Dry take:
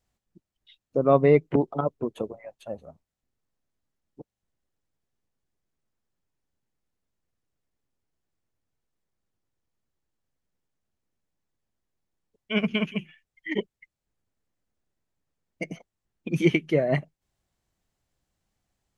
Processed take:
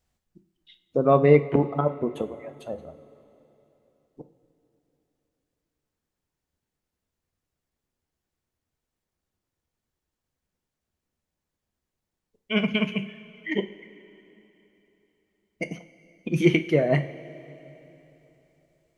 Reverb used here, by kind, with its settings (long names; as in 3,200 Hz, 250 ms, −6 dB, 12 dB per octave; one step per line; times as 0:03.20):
coupled-rooms reverb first 0.39 s, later 3.4 s, from −16 dB, DRR 8 dB
level +1.5 dB